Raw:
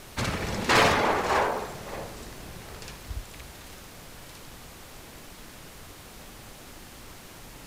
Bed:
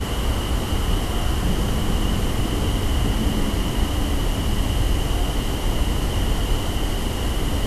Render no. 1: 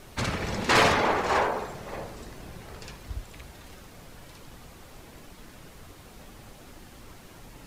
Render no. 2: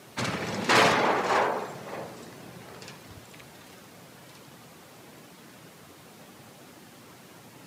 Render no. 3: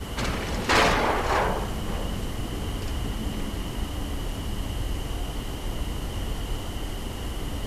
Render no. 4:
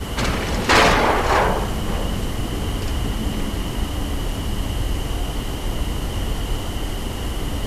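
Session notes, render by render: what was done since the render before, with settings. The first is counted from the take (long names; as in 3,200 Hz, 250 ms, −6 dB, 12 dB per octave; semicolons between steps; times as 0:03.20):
broadband denoise 6 dB, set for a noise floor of −47 dBFS
high-pass filter 120 Hz 24 dB per octave
mix in bed −9 dB
level +6.5 dB; brickwall limiter −3 dBFS, peak gain reduction 1 dB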